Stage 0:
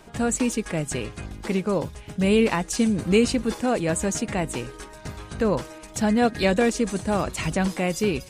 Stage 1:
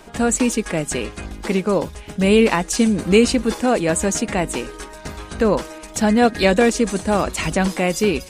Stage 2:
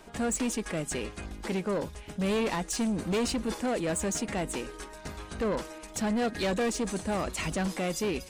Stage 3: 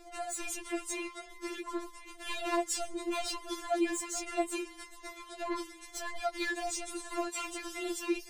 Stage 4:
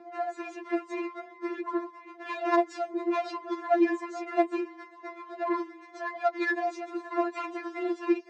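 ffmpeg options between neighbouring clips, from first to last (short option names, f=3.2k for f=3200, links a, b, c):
-af "equalizer=f=120:w=2.8:g=-13.5,volume=6dB"
-af "asoftclip=type=tanh:threshold=-16.5dB,volume=-8dB"
-af "afftfilt=real='re*4*eq(mod(b,16),0)':imag='im*4*eq(mod(b,16),0)':win_size=2048:overlap=0.75"
-af "adynamicsmooth=sensitivity=2:basefreq=1.6k,highpass=f=200:w=0.5412,highpass=f=200:w=1.3066,equalizer=f=870:t=q:w=4:g=5,equalizer=f=1.8k:t=q:w=4:g=3,equalizer=f=3.1k:t=q:w=4:g=-8,lowpass=f=7k:w=0.5412,lowpass=f=7k:w=1.3066,volume=7dB"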